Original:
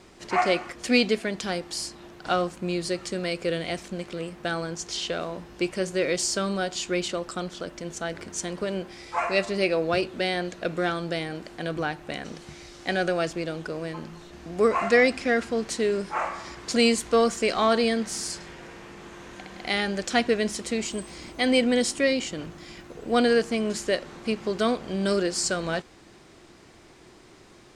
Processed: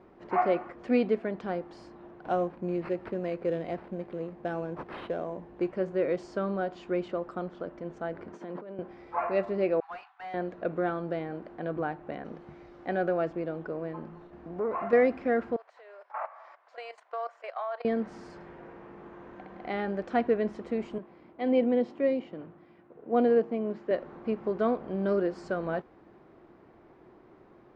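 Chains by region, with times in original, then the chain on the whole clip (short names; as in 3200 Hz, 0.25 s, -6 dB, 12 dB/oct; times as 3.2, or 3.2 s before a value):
2.21–5.7 bell 1300 Hz -8 dB 0.33 oct + sample-rate reducer 6900 Hz
8.33–8.79 HPF 170 Hz 24 dB/oct + high shelf 9000 Hz -7 dB + negative-ratio compressor -37 dBFS
9.8–10.34 brick-wall FIR band-pass 700–8100 Hz + hard clip -31.5 dBFS + expander -47 dBFS
14.26–14.93 compressor 2.5:1, threshold -25 dBFS + core saturation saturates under 630 Hz
15.56–17.85 elliptic high-pass 610 Hz, stop band 80 dB + level quantiser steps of 15 dB
20.98–23.91 dynamic EQ 1500 Hz, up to -7 dB, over -42 dBFS, Q 1.6 + BPF 130–4000 Hz + three-band expander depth 40%
whole clip: LPF 1100 Hz 12 dB/oct; low shelf 130 Hz -9.5 dB; gain -1 dB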